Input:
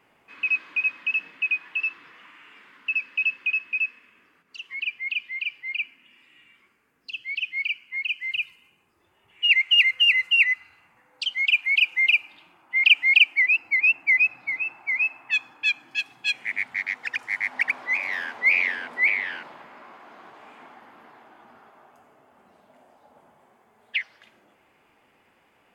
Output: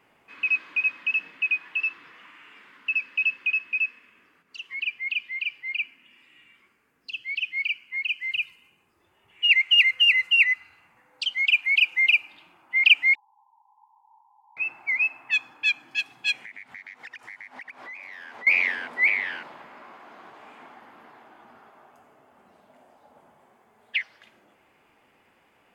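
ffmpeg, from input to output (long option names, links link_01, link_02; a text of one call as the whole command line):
ffmpeg -i in.wav -filter_complex "[0:a]asettb=1/sr,asplit=3[link_01][link_02][link_03];[link_01]atrim=end=13.154[link_04];[link_02]atrim=start=13.15:end=14.57,asetpts=PTS-STARTPTS,afade=type=in:duration=0.004:curve=qsin,afade=type=out:start_time=1.416:duration=0.004:curve=qsin,asuperpass=centerf=910:order=12:qfactor=3.8[link_05];[link_03]atrim=start=14.566[link_06];[link_04][link_05]acrossfade=duration=0.004:curve1=hsin:curve2=qsin[link_07];[link_07][link_06]acrossfade=duration=0.004:curve1=qsin:curve2=hsin,asettb=1/sr,asplit=3[link_08][link_09][link_10];[link_08]atrim=end=16.334[link_11];[link_09]atrim=start=16.33:end=18.47,asetpts=PTS-STARTPTS,afade=type=in:duration=0.004:curve=qsin,afade=type=out:start_time=2.136:duration=0.004:curve=qsin,acompressor=threshold=-38dB:ratio=10:attack=3.2:release=140:knee=1:detection=peak[link_12];[link_10]atrim=start=18.466[link_13];[link_11][link_12]acrossfade=duration=0.004:curve1=hsin:curve2=qsin[link_14];[link_14][link_13]acrossfade=duration=0.004:curve1=qsin:curve2=hsin" out.wav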